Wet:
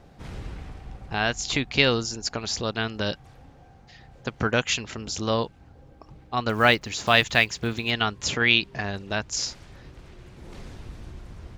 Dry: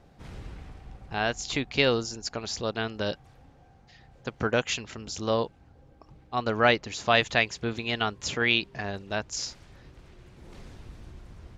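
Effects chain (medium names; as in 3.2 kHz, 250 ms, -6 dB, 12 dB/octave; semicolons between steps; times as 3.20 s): 6.49–7.92 s: block-companded coder 7-bit; dynamic bell 520 Hz, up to -5 dB, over -37 dBFS, Q 0.73; trim +5 dB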